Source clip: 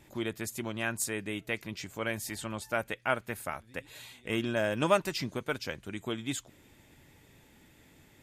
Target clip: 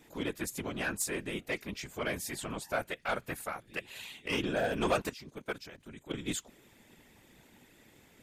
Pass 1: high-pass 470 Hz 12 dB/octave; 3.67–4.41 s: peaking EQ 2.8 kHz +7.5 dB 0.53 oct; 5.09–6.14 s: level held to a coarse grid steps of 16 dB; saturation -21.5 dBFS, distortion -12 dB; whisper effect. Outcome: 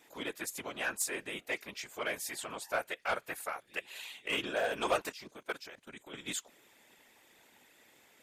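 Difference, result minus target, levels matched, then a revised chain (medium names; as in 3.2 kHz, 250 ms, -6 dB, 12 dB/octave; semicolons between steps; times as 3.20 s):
125 Hz band -12.0 dB
high-pass 120 Hz 12 dB/octave; 3.67–4.41 s: peaking EQ 2.8 kHz +7.5 dB 0.53 oct; 5.09–6.14 s: level held to a coarse grid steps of 16 dB; saturation -21.5 dBFS, distortion -12 dB; whisper effect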